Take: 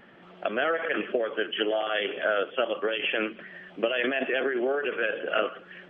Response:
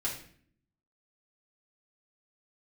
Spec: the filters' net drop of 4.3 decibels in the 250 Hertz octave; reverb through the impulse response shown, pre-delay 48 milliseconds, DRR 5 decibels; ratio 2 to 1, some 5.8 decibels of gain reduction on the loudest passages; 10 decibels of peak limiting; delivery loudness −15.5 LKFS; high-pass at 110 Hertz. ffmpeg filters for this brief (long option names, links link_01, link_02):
-filter_complex "[0:a]highpass=110,equalizer=frequency=250:width_type=o:gain=-6.5,acompressor=threshold=-32dB:ratio=2,alimiter=level_in=2dB:limit=-24dB:level=0:latency=1,volume=-2dB,asplit=2[link_01][link_02];[1:a]atrim=start_sample=2205,adelay=48[link_03];[link_02][link_03]afir=irnorm=-1:irlink=0,volume=-9.5dB[link_04];[link_01][link_04]amix=inputs=2:normalize=0,volume=19.5dB"